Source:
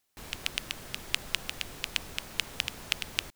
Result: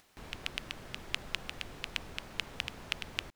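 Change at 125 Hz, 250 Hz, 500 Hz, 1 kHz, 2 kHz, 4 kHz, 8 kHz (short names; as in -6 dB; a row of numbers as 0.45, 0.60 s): -1.5, -1.5, -1.5, -2.0, -4.0, -6.0, -10.5 dB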